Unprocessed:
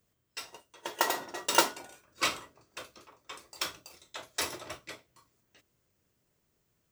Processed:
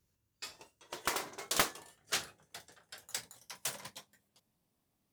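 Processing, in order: speed glide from 83% -> 187%; tone controls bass +6 dB, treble +5 dB; Doppler distortion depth 0.67 ms; gain -6.5 dB

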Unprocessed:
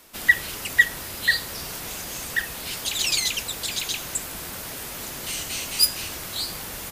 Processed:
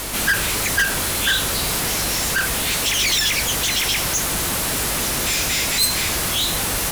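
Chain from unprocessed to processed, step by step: formant shift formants -3 st; power-law curve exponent 0.35; hum 50 Hz, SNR 16 dB; gain -6 dB

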